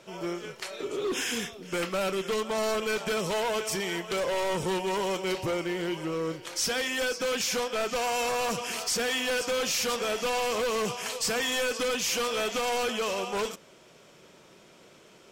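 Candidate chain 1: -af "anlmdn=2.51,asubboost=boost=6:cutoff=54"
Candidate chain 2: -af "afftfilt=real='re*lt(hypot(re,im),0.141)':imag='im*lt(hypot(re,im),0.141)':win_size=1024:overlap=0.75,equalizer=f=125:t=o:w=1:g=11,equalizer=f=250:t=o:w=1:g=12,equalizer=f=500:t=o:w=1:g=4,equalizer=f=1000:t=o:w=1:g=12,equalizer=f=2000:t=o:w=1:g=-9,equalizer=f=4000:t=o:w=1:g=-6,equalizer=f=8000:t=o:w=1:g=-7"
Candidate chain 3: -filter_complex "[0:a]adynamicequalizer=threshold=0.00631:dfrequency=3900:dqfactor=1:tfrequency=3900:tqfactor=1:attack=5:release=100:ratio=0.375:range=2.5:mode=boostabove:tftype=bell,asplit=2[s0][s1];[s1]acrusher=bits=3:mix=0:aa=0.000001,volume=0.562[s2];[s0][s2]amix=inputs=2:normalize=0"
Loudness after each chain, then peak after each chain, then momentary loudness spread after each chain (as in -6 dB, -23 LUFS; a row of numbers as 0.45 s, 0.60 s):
-29.5 LUFS, -28.5 LUFS, -25.5 LUFS; -17.5 dBFS, -15.0 dBFS, -12.5 dBFS; 6 LU, 7 LU, 10 LU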